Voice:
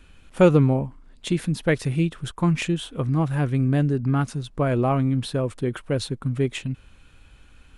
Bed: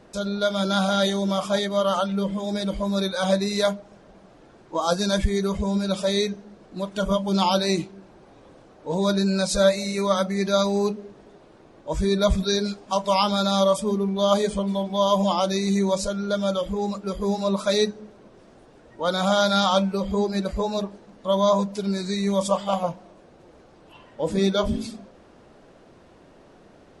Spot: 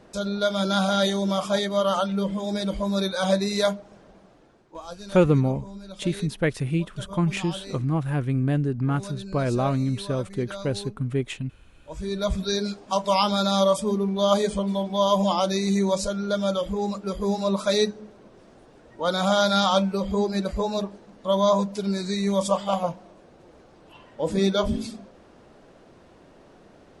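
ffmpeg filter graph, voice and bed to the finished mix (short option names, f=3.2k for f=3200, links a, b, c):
-filter_complex "[0:a]adelay=4750,volume=-2.5dB[a];[1:a]volume=15.5dB,afade=t=out:st=4.01:d=0.83:silence=0.158489,afade=t=in:st=11.74:d=1.08:silence=0.158489[b];[a][b]amix=inputs=2:normalize=0"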